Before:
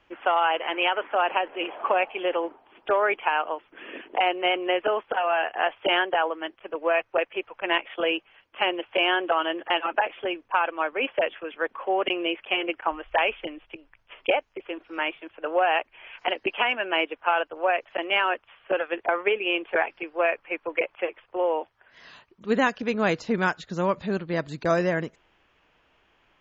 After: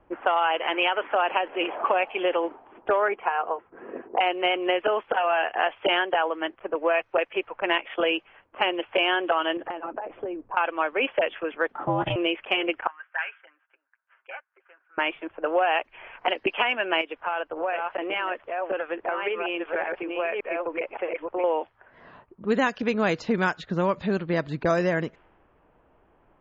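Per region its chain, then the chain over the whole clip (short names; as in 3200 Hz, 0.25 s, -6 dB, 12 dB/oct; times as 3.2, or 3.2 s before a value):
3.08–4.18 LPF 1500 Hz + notch comb 300 Hz
9.57–10.57 tilt shelf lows +6 dB, about 730 Hz + compressor 20:1, threshold -34 dBFS
11.72–12.16 bell 2400 Hz -15 dB 0.28 oct + doubler 14 ms -6.5 dB + ring modulator 240 Hz
12.87–14.98 ladder band-pass 1700 Hz, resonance 75% + bell 1800 Hz -4 dB 0.41 oct + comb 7.5 ms, depth 55%
17.01–21.44 reverse delay 0.566 s, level -6 dB + tone controls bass 0 dB, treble +8 dB + compressor 2:1, threshold -35 dBFS
whole clip: low-pass opened by the level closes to 860 Hz, open at -19 dBFS; compressor 2:1, threshold -32 dBFS; gain +7 dB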